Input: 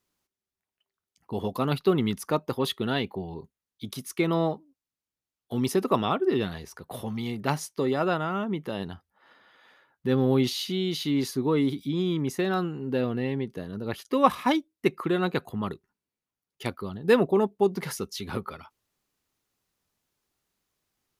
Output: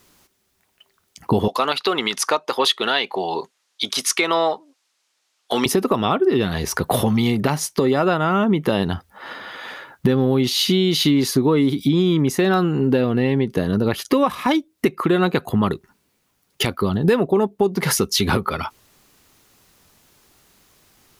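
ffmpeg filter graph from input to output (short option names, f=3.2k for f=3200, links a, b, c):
-filter_complex "[0:a]asettb=1/sr,asplit=3[a][b][c];[a]atrim=end=1.484[d];[b]atrim=start=1.48:end=5.66,asetpts=PTS-STARTPTS,afade=t=in:d=0.004:c=qsin,afade=t=out:st=4.176:d=0.004:c=qsin,deesser=0.55,highpass=660,lowpass=6.4k,highshelf=f=4k:g=6.5[e];[c]atrim=start=5.656[f];[d][e]acrossfade=d=0.004:c1=hsin:c2=qsin[g];[g][f]acrossfade=d=0.004:c1=qsin:c2=hsin,acompressor=threshold=-39dB:ratio=6,alimiter=level_in=29dB:limit=-1dB:release=50:level=0:latency=1,volume=-5.5dB"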